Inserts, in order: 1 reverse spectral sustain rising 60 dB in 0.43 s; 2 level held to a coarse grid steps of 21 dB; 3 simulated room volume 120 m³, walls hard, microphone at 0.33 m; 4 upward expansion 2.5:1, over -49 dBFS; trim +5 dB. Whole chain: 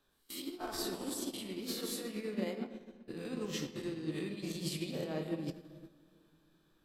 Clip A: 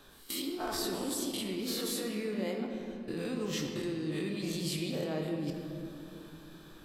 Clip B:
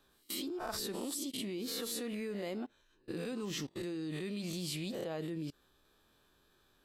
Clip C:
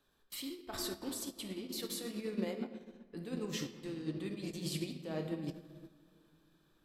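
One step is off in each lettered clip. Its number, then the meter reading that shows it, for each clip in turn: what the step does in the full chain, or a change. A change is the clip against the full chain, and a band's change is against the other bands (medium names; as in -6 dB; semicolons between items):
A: 4, crest factor change -4.0 dB; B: 3, momentary loudness spread change -4 LU; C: 1, 1 kHz band -2.5 dB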